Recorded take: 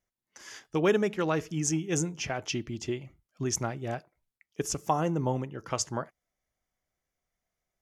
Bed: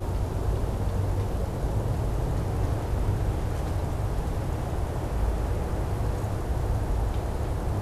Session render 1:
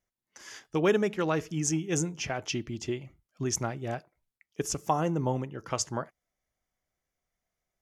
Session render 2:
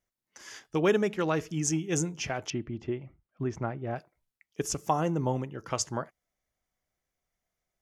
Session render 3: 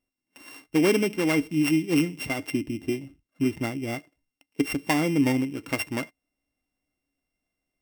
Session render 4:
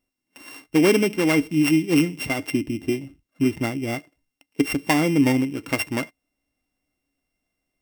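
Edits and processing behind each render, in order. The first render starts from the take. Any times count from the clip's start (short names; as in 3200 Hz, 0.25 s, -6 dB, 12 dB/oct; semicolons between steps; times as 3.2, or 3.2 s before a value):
nothing audible
2.5–3.96 LPF 1800 Hz
sample sorter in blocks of 16 samples; small resonant body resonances 280/2100 Hz, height 18 dB, ringing for 90 ms
gain +4 dB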